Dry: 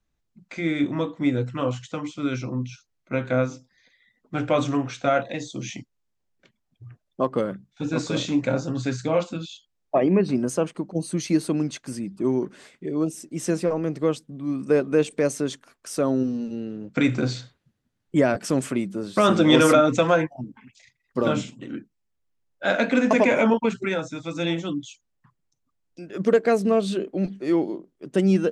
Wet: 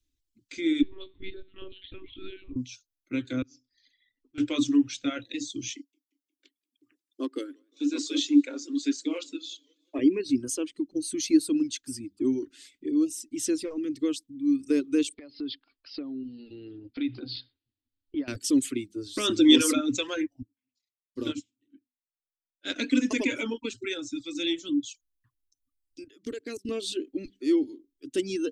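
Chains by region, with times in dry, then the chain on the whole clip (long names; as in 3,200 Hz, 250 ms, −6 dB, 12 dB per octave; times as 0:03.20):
0:00.82–0:02.56: flutter between parallel walls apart 4.9 metres, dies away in 0.27 s + downward compressor 1.5 to 1, threshold −39 dBFS + one-pitch LPC vocoder at 8 kHz 190 Hz
0:03.42–0:04.38: low-pass filter 6,000 Hz 24 dB per octave + volume swells 315 ms + notch filter 3,700 Hz
0:05.75–0:09.99: Chebyshev high-pass filter 280 Hz, order 4 + feedback echo with a swinging delay time 178 ms, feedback 57%, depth 168 cents, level −22 dB
0:15.14–0:18.28: parametric band 760 Hz +14 dB 0.55 octaves + downward compressor 5 to 1, threshold −27 dBFS + Chebyshev low-pass filter 5,000 Hz, order 8
0:20.42–0:22.76: mains-hum notches 50/100/150/200/250 Hz + expander for the loud parts 2.5 to 1, over −35 dBFS
0:26.04–0:26.69: high-pass filter 110 Hz + output level in coarse steps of 23 dB
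whole clip: drawn EQ curve 110 Hz 0 dB, 170 Hz −27 dB, 280 Hz +7 dB, 720 Hz −25 dB, 3,400 Hz +5 dB; reverb reduction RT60 1.2 s; dynamic equaliser 870 Hz, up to +4 dB, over −40 dBFS, Q 1.3; level −2 dB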